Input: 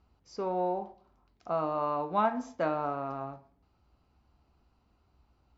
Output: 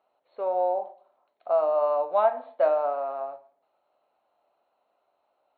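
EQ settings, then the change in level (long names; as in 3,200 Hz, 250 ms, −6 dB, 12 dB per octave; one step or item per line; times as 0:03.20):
high-pass with resonance 600 Hz, resonance Q 4.9
linear-phase brick-wall low-pass 4,400 Hz
−2.5 dB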